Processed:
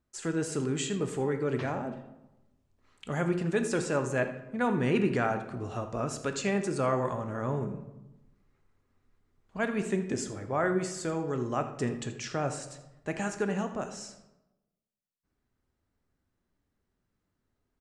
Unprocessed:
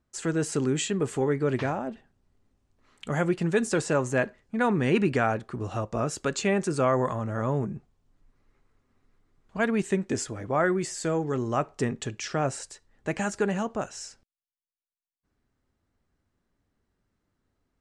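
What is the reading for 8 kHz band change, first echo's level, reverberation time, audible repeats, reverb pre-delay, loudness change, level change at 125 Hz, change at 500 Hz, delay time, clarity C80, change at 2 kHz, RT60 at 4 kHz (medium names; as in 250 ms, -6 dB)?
-4.0 dB, -15.5 dB, 1.0 s, 1, 15 ms, -3.5 dB, -3.5 dB, -3.5 dB, 82 ms, 11.5 dB, -4.0 dB, 0.65 s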